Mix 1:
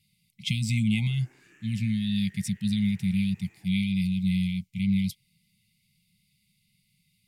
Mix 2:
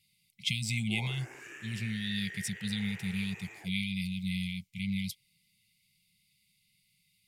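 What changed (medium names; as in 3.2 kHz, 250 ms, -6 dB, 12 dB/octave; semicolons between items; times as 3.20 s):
background +11.5 dB; master: add resonant low shelf 340 Hz -7.5 dB, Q 1.5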